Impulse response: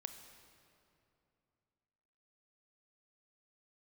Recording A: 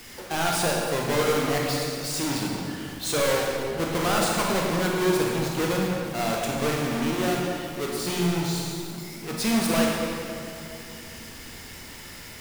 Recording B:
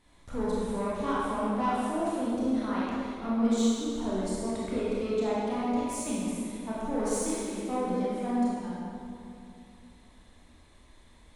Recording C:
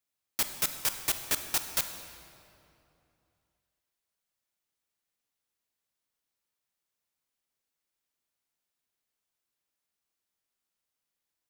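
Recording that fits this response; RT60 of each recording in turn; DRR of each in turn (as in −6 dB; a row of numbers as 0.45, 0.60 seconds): C; 2.7, 2.7, 2.8 seconds; −2.0, −8.0, 7.5 decibels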